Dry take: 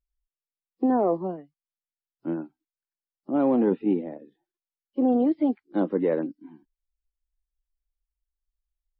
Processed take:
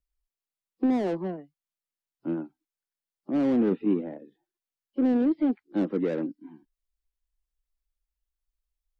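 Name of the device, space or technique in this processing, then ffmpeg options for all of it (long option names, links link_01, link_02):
one-band saturation: -filter_complex "[0:a]acrossover=split=410|2100[link_01][link_02][link_03];[link_02]asoftclip=type=tanh:threshold=-35dB[link_04];[link_01][link_04][link_03]amix=inputs=3:normalize=0"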